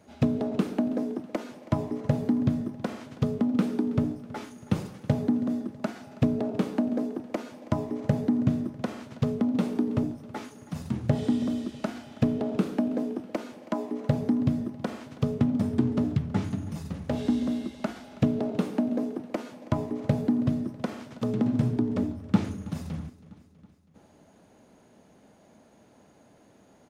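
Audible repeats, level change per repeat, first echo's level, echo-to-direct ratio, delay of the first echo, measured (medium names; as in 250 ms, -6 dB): 4, -5.0 dB, -19.0 dB, -17.5 dB, 324 ms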